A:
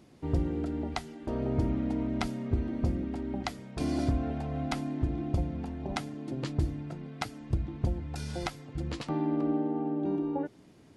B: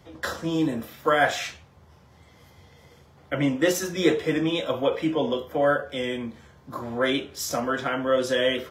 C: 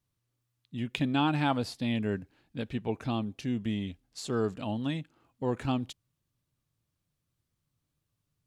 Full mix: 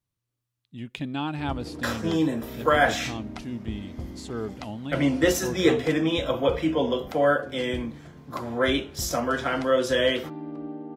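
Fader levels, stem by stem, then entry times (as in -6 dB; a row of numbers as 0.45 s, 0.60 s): -7.0 dB, +0.5 dB, -3.0 dB; 1.15 s, 1.60 s, 0.00 s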